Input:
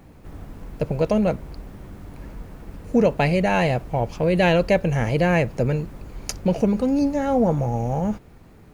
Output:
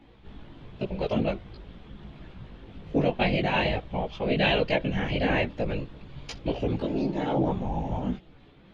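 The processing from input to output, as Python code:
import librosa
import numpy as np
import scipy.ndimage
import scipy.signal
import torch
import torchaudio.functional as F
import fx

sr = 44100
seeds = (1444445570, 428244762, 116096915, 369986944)

y = fx.lowpass_res(x, sr, hz=3400.0, q=4.5)
y = fx.whisperise(y, sr, seeds[0])
y = fx.chorus_voices(y, sr, voices=4, hz=0.43, base_ms=18, depth_ms=3.5, mix_pct=50)
y = y * 10.0 ** (-4.0 / 20.0)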